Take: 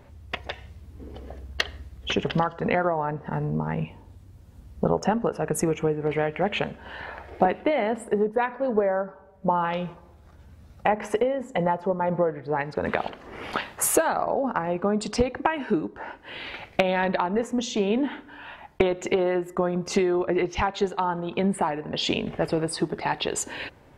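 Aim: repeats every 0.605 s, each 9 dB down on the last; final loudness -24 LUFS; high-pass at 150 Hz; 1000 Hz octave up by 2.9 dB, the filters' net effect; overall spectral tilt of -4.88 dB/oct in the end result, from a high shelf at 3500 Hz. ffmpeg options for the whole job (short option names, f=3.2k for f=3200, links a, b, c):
-af "highpass=150,equalizer=f=1k:t=o:g=4,highshelf=f=3.5k:g=-3.5,aecho=1:1:605|1210|1815|2420:0.355|0.124|0.0435|0.0152,volume=1.5dB"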